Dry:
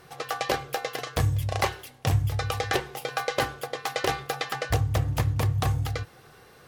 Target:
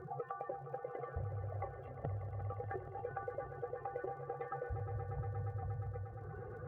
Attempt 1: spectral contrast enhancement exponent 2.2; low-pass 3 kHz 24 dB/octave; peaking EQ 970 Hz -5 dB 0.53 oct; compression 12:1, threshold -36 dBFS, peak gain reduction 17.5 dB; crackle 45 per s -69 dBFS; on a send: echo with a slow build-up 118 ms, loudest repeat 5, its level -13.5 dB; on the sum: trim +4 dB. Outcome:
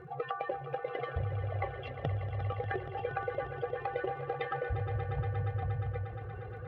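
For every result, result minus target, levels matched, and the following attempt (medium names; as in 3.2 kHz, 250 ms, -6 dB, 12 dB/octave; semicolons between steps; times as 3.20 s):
compression: peak gain reduction -7.5 dB; 2 kHz band +4.5 dB
spectral contrast enhancement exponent 2.2; low-pass 3 kHz 24 dB/octave; peaking EQ 970 Hz -5 dB 0.53 oct; compression 12:1, threshold -44 dBFS, peak gain reduction 25 dB; crackle 45 per s -69 dBFS; on a send: echo with a slow build-up 118 ms, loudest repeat 5, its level -13.5 dB; on the sum: trim +4 dB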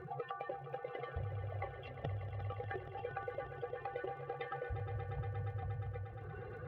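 2 kHz band +4.5 dB
spectral contrast enhancement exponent 2.2; low-pass 1.5 kHz 24 dB/octave; peaking EQ 970 Hz -5 dB 0.53 oct; compression 12:1, threshold -44 dBFS, peak gain reduction 25 dB; crackle 45 per s -69 dBFS; on a send: echo with a slow build-up 118 ms, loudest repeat 5, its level -13.5 dB; on the sum: trim +4 dB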